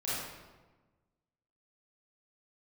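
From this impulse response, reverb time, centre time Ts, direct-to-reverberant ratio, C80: 1.3 s, 99 ms, −10.5 dB, 0.5 dB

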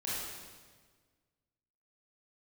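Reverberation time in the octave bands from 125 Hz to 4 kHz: 1.9, 1.8, 1.6, 1.4, 1.4, 1.3 seconds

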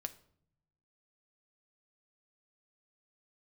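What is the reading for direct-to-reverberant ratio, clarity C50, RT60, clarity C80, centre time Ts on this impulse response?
8.5 dB, 16.5 dB, non-exponential decay, 20.0 dB, 4 ms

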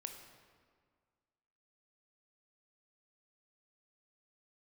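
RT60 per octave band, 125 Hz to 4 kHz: 1.9, 1.9, 1.8, 1.8, 1.5, 1.2 seconds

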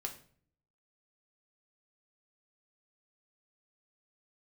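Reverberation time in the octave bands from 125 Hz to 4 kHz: 0.85, 0.75, 0.55, 0.45, 0.45, 0.40 seconds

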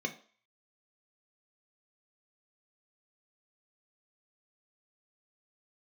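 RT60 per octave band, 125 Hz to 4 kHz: 0.20, 0.40, 0.45, 0.45, 0.50, 0.50 seconds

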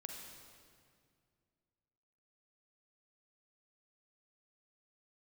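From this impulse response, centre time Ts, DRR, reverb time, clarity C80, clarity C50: 77 ms, 1.0 dB, 2.2 s, 3.5 dB, 2.0 dB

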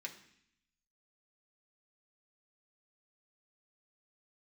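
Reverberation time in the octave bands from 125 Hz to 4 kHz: 1.0, 0.95, 0.65, 0.65, 0.85, 0.80 seconds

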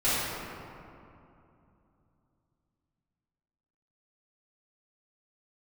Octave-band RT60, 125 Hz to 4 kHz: 4.0, 3.6, 2.8, 2.7, 2.0, 1.3 seconds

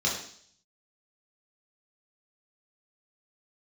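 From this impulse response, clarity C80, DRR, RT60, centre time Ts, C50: 8.0 dB, −4.5 dB, 0.55 s, 38 ms, 4.5 dB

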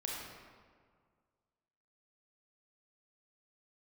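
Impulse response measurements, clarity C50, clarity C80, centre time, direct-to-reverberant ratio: −1.5 dB, 1.0 dB, 99 ms, −3.5 dB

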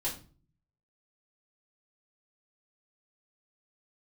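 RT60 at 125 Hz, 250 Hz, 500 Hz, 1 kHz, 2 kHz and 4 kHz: 0.90, 0.65, 0.45, 0.35, 0.30, 0.30 seconds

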